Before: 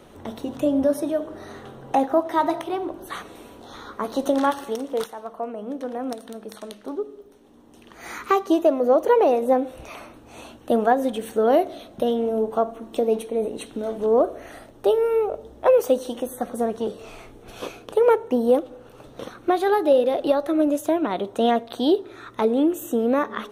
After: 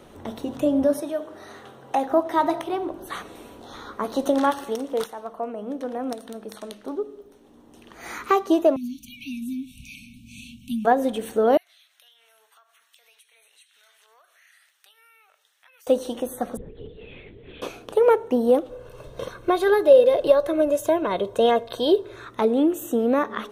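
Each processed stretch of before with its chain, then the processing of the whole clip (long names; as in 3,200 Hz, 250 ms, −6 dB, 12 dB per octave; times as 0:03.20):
0:01.00–0:02.06: high-pass filter 54 Hz + low-shelf EQ 450 Hz −9 dB
0:08.76–0:10.85: linear-phase brick-wall band-stop 270–2,200 Hz + multiband upward and downward compressor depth 40%
0:11.57–0:15.87: Chebyshev high-pass filter 1,800 Hz, order 3 + downward compressor 4 to 1, threshold −55 dBFS
0:16.57–0:17.62: downward compressor, threshold −36 dBFS + flat-topped bell 970 Hz −15 dB 1.3 octaves + linear-prediction vocoder at 8 kHz whisper
0:18.69–0:22.25: low-shelf EQ 130 Hz +5 dB + comb filter 1.9 ms
whole clip: no processing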